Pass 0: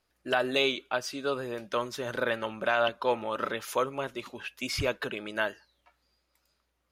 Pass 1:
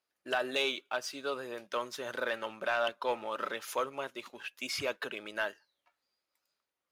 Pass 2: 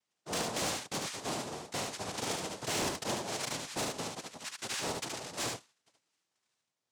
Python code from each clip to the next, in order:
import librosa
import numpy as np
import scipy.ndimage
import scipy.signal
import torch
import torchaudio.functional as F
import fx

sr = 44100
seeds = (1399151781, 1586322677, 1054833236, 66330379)

y1 = scipy.signal.sosfilt(scipy.signal.butter(2, 120.0, 'highpass', fs=sr, output='sos'), x)
y1 = fx.low_shelf(y1, sr, hz=250.0, db=-11.5)
y1 = fx.leveller(y1, sr, passes=1)
y1 = y1 * 10.0 ** (-6.5 / 20.0)
y2 = fx.noise_vocoder(y1, sr, seeds[0], bands=2)
y2 = 10.0 ** (-29.5 / 20.0) * np.tanh(y2 / 10.0 ** (-29.5 / 20.0))
y2 = y2 + 10.0 ** (-3.5 / 20.0) * np.pad(y2, (int(73 * sr / 1000.0), 0))[:len(y2)]